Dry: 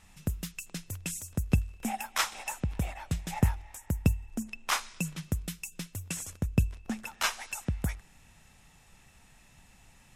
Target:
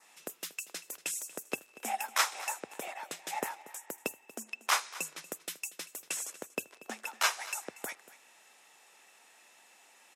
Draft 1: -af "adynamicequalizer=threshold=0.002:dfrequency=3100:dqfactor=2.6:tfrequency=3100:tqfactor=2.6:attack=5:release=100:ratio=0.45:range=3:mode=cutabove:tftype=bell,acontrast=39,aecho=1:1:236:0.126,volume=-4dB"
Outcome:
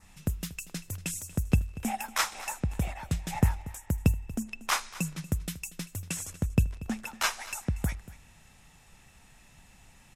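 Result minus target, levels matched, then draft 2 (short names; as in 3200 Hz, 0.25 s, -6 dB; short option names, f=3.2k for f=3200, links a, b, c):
500 Hz band -3.0 dB
-af "adynamicequalizer=threshold=0.002:dfrequency=3100:dqfactor=2.6:tfrequency=3100:tqfactor=2.6:attack=5:release=100:ratio=0.45:range=3:mode=cutabove:tftype=bell,highpass=f=370:w=0.5412,highpass=f=370:w=1.3066,acontrast=39,aecho=1:1:236:0.126,volume=-4dB"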